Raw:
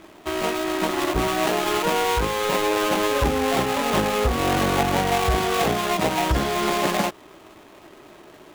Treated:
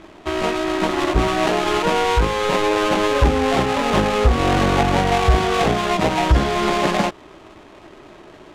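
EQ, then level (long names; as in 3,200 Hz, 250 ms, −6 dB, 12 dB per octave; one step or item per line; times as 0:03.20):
high-frequency loss of the air 59 metres
low-shelf EQ 77 Hz +8.5 dB
+3.5 dB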